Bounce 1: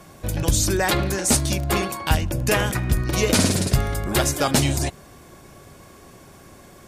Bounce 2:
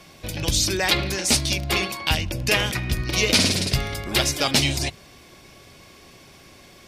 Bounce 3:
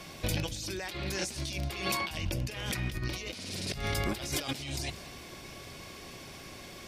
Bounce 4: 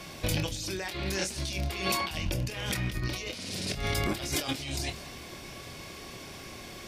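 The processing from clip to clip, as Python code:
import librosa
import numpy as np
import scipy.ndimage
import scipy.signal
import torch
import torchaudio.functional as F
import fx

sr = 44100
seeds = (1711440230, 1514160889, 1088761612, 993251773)

y1 = fx.band_shelf(x, sr, hz=3400.0, db=9.5, octaves=1.7)
y1 = fx.hum_notches(y1, sr, base_hz=50, count=4)
y1 = y1 * 10.0 ** (-3.5 / 20.0)
y2 = fx.over_compress(y1, sr, threshold_db=-31.0, ratio=-1.0)
y2 = y2 + 10.0 ** (-17.0 / 20.0) * np.pad(y2, (int(189 * sr / 1000.0), 0))[:len(y2)]
y2 = y2 * 10.0 ** (-5.0 / 20.0)
y3 = fx.doubler(y2, sr, ms=26.0, db=-9)
y3 = y3 * 10.0 ** (2.0 / 20.0)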